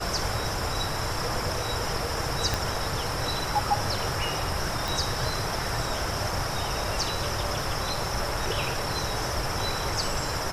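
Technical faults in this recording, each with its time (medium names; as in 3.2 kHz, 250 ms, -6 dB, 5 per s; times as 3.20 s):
2.54 s: pop
4.88 s: pop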